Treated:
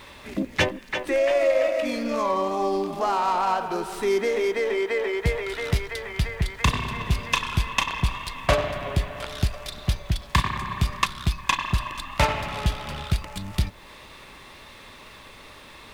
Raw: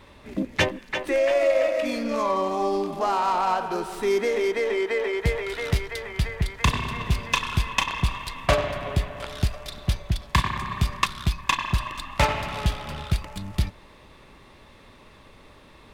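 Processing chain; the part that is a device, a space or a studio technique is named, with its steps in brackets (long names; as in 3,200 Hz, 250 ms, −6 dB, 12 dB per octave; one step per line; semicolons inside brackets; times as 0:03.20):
noise-reduction cassette on a plain deck (one half of a high-frequency compander encoder only; tape wow and flutter 22 cents; white noise bed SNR 41 dB)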